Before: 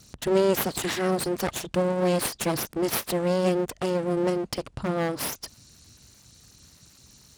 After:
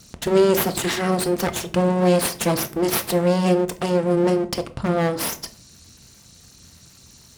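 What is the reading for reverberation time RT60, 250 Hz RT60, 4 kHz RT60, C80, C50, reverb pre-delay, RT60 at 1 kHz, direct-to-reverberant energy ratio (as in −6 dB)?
0.45 s, 0.70 s, 0.30 s, 21.0 dB, 16.5 dB, 4 ms, 0.40 s, 8.5 dB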